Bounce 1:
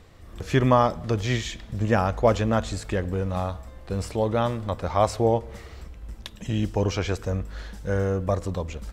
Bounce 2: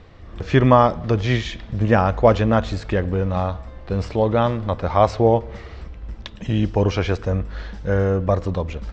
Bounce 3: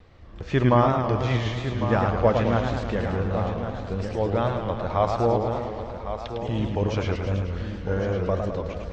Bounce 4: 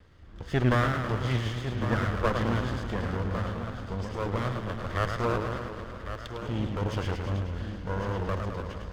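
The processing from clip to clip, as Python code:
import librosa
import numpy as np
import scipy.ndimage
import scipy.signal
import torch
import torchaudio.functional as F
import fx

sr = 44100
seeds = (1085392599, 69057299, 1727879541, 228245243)

y1 = scipy.signal.sosfilt(scipy.signal.bessel(8, 3800.0, 'lowpass', norm='mag', fs=sr, output='sos'), x)
y1 = F.gain(torch.from_numpy(y1), 5.5).numpy()
y2 = fx.vibrato(y1, sr, rate_hz=2.5, depth_cents=57.0)
y2 = y2 + 10.0 ** (-10.0 / 20.0) * np.pad(y2, (int(1103 * sr / 1000.0), 0))[:len(y2)]
y2 = fx.echo_warbled(y2, sr, ms=109, feedback_pct=72, rate_hz=2.8, cents=183, wet_db=-6)
y2 = F.gain(torch.from_numpy(y2), -7.0).numpy()
y3 = fx.lower_of_two(y2, sr, delay_ms=0.62)
y3 = F.gain(torch.from_numpy(y3), -3.5).numpy()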